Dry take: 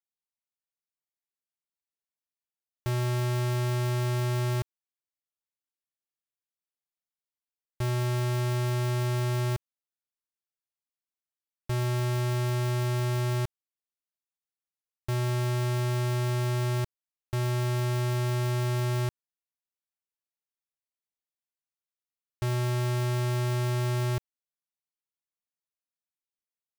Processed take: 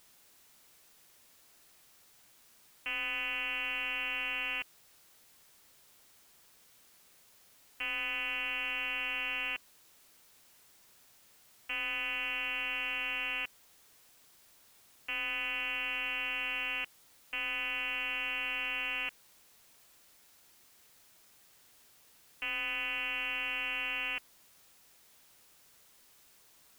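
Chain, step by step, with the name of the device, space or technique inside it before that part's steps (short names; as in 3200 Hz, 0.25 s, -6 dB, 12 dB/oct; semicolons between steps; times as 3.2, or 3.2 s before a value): scrambled radio voice (BPF 330–3100 Hz; inverted band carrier 3100 Hz; white noise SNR 23 dB)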